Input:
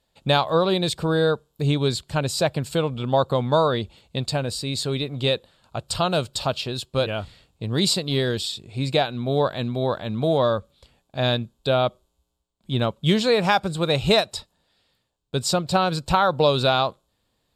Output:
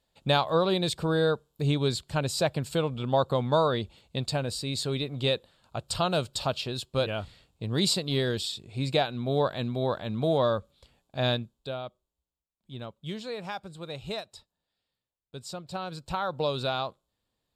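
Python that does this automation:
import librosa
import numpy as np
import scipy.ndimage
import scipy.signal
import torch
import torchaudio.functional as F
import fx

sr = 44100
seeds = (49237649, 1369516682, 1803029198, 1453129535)

y = fx.gain(x, sr, db=fx.line((11.31, -4.5), (11.83, -17.0), (15.53, -17.0), (16.42, -10.0)))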